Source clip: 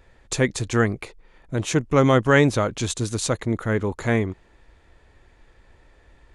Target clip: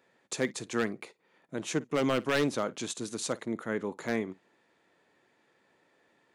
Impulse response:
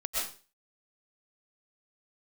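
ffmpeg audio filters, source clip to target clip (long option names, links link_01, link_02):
-filter_complex "[0:a]highpass=frequency=170:width=0.5412,highpass=frequency=170:width=1.3066,aeval=exprs='0.316*(abs(mod(val(0)/0.316+3,4)-2)-1)':channel_layout=same,asplit=2[link_01][link_02];[1:a]atrim=start_sample=2205,atrim=end_sample=3969,adelay=53[link_03];[link_02][link_03]afir=irnorm=-1:irlink=0,volume=-19.5dB[link_04];[link_01][link_04]amix=inputs=2:normalize=0,volume=-8.5dB"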